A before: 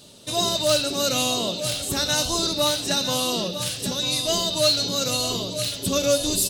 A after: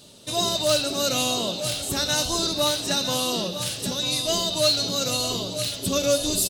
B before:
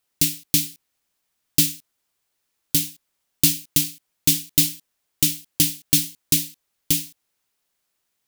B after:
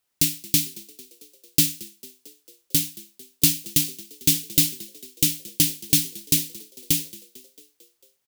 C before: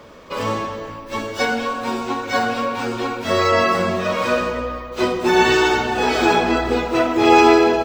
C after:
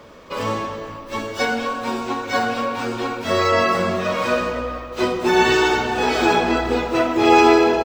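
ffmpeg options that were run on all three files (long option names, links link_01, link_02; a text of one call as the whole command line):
ffmpeg -i in.wav -filter_complex "[0:a]asplit=6[link_01][link_02][link_03][link_04][link_05][link_06];[link_02]adelay=224,afreqshift=47,volume=-21dB[link_07];[link_03]adelay=448,afreqshift=94,volume=-24.9dB[link_08];[link_04]adelay=672,afreqshift=141,volume=-28.8dB[link_09];[link_05]adelay=896,afreqshift=188,volume=-32.6dB[link_10];[link_06]adelay=1120,afreqshift=235,volume=-36.5dB[link_11];[link_01][link_07][link_08][link_09][link_10][link_11]amix=inputs=6:normalize=0,volume=-1dB" out.wav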